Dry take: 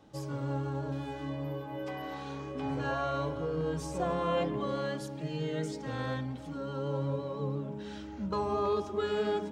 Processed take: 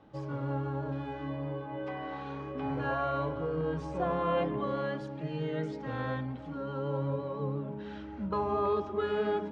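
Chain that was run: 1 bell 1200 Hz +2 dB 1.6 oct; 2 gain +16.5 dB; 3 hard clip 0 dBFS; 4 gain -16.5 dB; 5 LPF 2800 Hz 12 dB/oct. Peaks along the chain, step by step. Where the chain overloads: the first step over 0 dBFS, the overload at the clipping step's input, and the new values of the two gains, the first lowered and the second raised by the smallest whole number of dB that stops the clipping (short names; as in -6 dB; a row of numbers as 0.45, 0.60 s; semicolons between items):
-19.0, -2.5, -2.5, -19.0, -19.0 dBFS; no overload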